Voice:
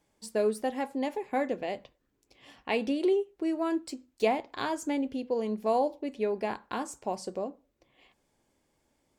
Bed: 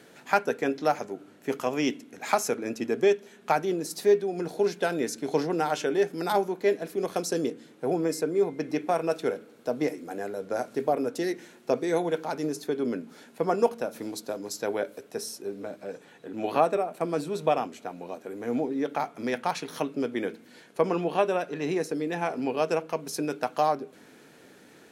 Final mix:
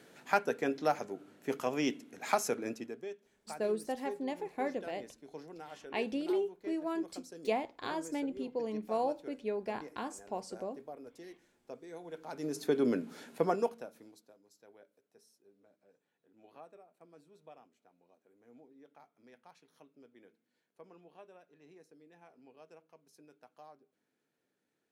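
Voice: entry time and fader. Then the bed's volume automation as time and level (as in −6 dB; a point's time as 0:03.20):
3.25 s, −6.0 dB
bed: 0:02.68 −5.5 dB
0:03.05 −21.5 dB
0:11.99 −21.5 dB
0:12.70 −0.5 dB
0:13.35 −0.5 dB
0:14.40 −30.5 dB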